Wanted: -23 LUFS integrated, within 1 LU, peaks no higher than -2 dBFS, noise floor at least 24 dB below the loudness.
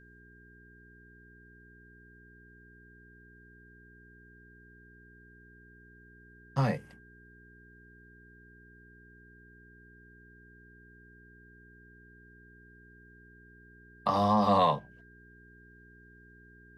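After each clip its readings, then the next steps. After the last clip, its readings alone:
hum 60 Hz; harmonics up to 420 Hz; hum level -55 dBFS; steady tone 1600 Hz; tone level -57 dBFS; loudness -28.0 LUFS; peak -12.5 dBFS; loudness target -23.0 LUFS
-> de-hum 60 Hz, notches 7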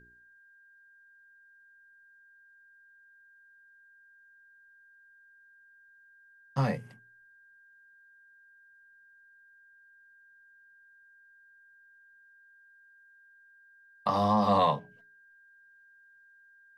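hum none; steady tone 1600 Hz; tone level -57 dBFS
-> notch 1600 Hz, Q 30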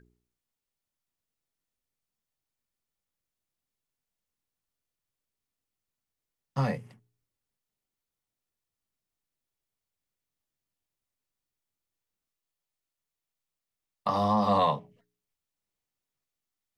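steady tone none; loudness -28.5 LUFS; peak -13.0 dBFS; loudness target -23.0 LUFS
-> gain +5.5 dB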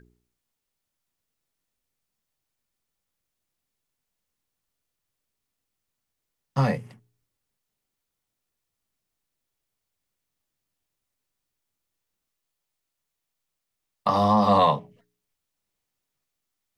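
loudness -23.0 LUFS; peak -7.5 dBFS; noise floor -83 dBFS

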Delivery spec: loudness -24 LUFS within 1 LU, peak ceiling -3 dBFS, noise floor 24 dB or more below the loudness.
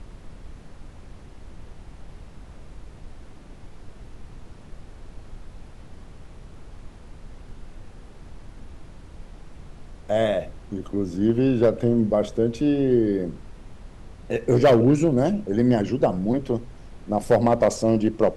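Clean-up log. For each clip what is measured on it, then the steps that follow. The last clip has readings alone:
clipped 0.5%; flat tops at -10.0 dBFS; noise floor -45 dBFS; noise floor target -46 dBFS; loudness -22.0 LUFS; peak -10.0 dBFS; loudness target -24.0 LUFS
-> clip repair -10 dBFS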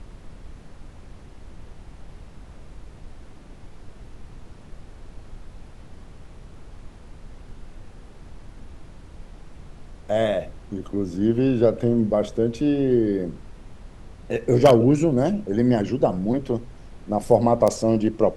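clipped 0.0%; noise floor -45 dBFS; noise floor target -46 dBFS
-> noise print and reduce 6 dB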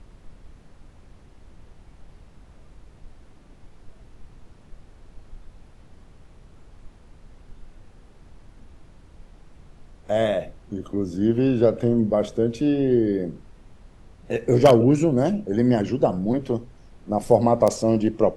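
noise floor -51 dBFS; loudness -21.5 LUFS; peak -1.0 dBFS; loudness target -24.0 LUFS
-> gain -2.5 dB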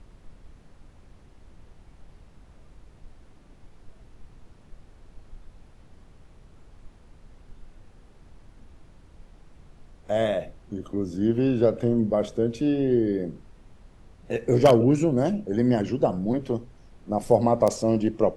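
loudness -24.0 LUFS; peak -3.5 dBFS; noise floor -53 dBFS

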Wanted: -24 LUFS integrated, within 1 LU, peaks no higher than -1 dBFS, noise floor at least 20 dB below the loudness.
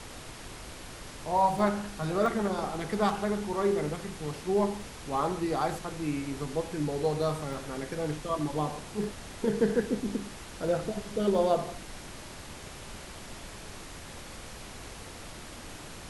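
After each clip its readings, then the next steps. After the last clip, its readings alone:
dropouts 7; longest dropout 1.2 ms; noise floor -45 dBFS; noise floor target -51 dBFS; loudness -30.5 LUFS; peak -12.5 dBFS; loudness target -24.0 LUFS
-> interpolate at 1.59/2.26/4.81/7.53/9.04/10.68/11.35, 1.2 ms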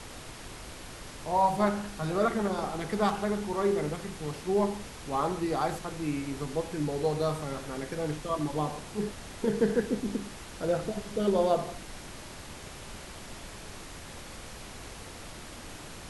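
dropouts 0; noise floor -45 dBFS; noise floor target -51 dBFS
-> noise print and reduce 6 dB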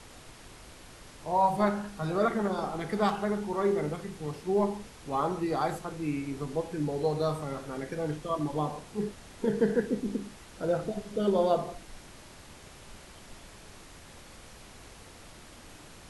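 noise floor -51 dBFS; loudness -31.0 LUFS; peak -13.0 dBFS; loudness target -24.0 LUFS
-> gain +7 dB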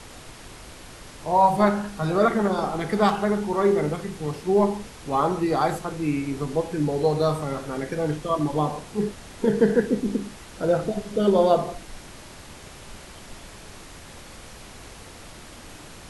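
loudness -24.0 LUFS; peak -6.0 dBFS; noise floor -44 dBFS

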